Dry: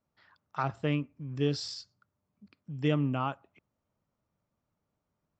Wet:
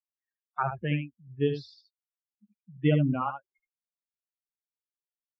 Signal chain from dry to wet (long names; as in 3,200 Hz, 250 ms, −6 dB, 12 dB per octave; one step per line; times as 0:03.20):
spectral dynamics exaggerated over time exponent 3
low-pass filter 3,100 Hz 24 dB per octave
on a send: single-tap delay 74 ms −8 dB
on the sum: level +6.5 dB